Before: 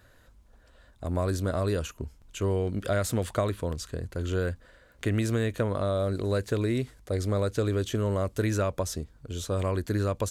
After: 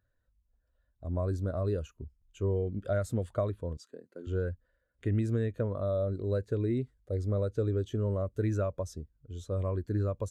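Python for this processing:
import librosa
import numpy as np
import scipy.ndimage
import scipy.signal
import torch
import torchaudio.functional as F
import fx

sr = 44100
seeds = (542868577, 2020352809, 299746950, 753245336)

y = fx.highpass(x, sr, hz=200.0, slope=24, at=(3.77, 4.27))
y = fx.spectral_expand(y, sr, expansion=1.5)
y = y * 10.0 ** (-3.5 / 20.0)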